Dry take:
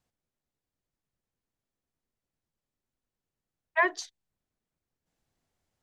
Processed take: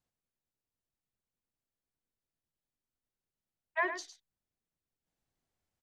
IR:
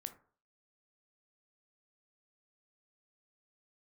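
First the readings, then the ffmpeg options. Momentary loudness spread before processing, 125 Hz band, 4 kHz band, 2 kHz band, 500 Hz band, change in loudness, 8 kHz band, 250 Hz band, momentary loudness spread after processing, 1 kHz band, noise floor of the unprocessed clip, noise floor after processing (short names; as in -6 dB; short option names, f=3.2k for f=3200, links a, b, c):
16 LU, n/a, -6.5 dB, -6.5 dB, -6.5 dB, -7.5 dB, -6.5 dB, -6.5 dB, 13 LU, -6.5 dB, under -85 dBFS, under -85 dBFS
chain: -af "aecho=1:1:105:0.335,volume=-7dB"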